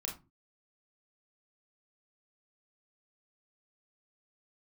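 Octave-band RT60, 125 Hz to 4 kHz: 0.45, 0.45, 0.35, 0.25, 0.20, 0.15 s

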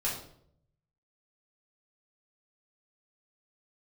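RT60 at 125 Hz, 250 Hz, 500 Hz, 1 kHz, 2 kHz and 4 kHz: 1.2, 0.80, 0.75, 0.60, 0.50, 0.50 s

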